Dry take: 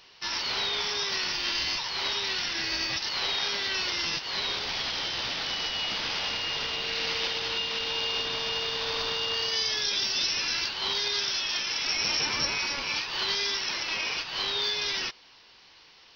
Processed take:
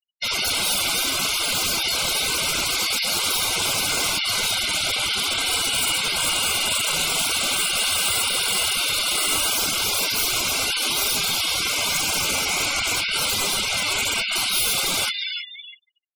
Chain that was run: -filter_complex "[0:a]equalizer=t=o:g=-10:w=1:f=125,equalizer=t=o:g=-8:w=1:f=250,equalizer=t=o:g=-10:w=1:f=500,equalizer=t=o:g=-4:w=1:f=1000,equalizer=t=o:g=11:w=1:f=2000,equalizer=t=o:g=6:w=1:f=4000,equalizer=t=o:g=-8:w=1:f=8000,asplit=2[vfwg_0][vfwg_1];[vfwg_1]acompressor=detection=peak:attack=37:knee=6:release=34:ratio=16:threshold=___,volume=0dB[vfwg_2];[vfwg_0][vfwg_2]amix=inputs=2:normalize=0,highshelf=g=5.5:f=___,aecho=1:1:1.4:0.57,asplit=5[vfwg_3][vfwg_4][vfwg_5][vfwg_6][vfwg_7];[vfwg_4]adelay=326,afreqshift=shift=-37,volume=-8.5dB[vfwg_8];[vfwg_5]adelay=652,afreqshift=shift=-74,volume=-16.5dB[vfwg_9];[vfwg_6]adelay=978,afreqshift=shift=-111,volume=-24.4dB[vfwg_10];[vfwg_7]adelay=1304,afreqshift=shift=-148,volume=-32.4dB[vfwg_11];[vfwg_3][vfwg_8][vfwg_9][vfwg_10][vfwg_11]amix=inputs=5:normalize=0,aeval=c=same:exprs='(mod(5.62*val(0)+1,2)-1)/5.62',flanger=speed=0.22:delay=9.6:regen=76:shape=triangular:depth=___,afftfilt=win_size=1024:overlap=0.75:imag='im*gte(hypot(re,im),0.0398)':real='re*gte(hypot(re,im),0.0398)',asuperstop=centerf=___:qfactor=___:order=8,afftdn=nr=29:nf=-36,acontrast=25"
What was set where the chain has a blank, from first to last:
-34dB, 9400, 3, 1800, 4